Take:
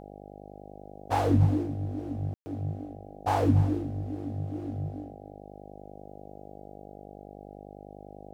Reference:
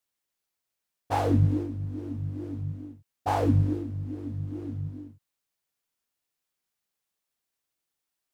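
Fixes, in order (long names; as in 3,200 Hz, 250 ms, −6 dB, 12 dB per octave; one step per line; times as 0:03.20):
hum removal 50.2 Hz, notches 16
ambience match 0:02.34–0:02.46
echo removal 289 ms −16.5 dB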